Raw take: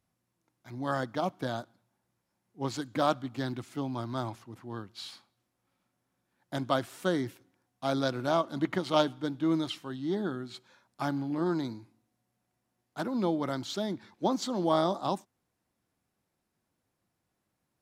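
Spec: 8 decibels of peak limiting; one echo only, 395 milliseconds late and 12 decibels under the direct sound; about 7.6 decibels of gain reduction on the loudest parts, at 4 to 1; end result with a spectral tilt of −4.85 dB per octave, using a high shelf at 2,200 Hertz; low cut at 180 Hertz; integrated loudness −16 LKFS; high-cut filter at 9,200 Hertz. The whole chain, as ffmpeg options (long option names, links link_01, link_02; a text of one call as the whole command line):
ffmpeg -i in.wav -af "highpass=180,lowpass=9200,highshelf=frequency=2200:gain=-5,acompressor=threshold=-30dB:ratio=4,alimiter=level_in=2.5dB:limit=-24dB:level=0:latency=1,volume=-2.5dB,aecho=1:1:395:0.251,volume=22.5dB" out.wav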